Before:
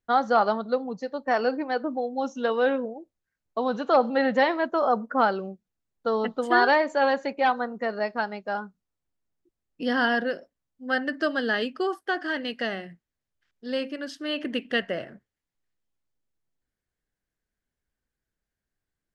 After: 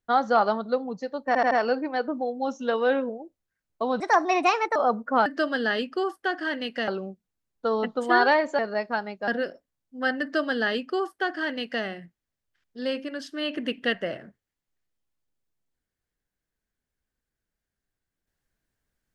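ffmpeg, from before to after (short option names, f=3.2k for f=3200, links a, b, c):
-filter_complex "[0:a]asplit=10[a][b][c][d][e][f][g][h][i][j];[a]atrim=end=1.352[k];[b]atrim=start=1.268:end=1.352[l];[c]atrim=start=1.268:end=1.352[m];[d]atrim=start=1.268:end=3.764[n];[e]atrim=start=3.76:end=4.79,asetpts=PTS-STARTPTS,asetrate=59976,aresample=44100,atrim=end_sample=33399,asetpts=PTS-STARTPTS[o];[f]atrim=start=4.786:end=5.292[p];[g]atrim=start=11.088:end=12.712[q];[h]atrim=start=5.288:end=7.002[r];[i]atrim=start=7.838:end=8.532[s];[j]atrim=start=10.148[t];[k][l]acrossfade=d=0.004:c1=hsin:c2=hsin[u];[u][m]acrossfade=d=0.004:c1=hsin:c2=hsin[v];[v][n]acrossfade=d=0.004:c1=hsin:c2=hsin[w];[w][o]acrossfade=d=0.004:c1=hsin:c2=hsin[x];[x][p]acrossfade=d=0.004:c1=hsin:c2=hsin[y];[y][q]acrossfade=d=0.004:c1=hsin:c2=hsin[z];[z][r]acrossfade=d=0.004:c1=hsin:c2=hsin[aa];[aa][s]acrossfade=d=0.004:c1=hsin:c2=hsin[ab];[ab][t]acrossfade=d=0.004:c1=hsin:c2=hsin"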